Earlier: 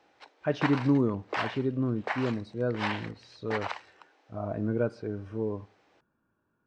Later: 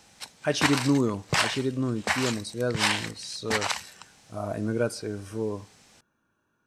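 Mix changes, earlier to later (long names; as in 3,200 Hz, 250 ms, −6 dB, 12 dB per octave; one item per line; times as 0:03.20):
background: remove Butterworth high-pass 280 Hz 96 dB per octave
master: remove head-to-tape spacing loss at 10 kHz 38 dB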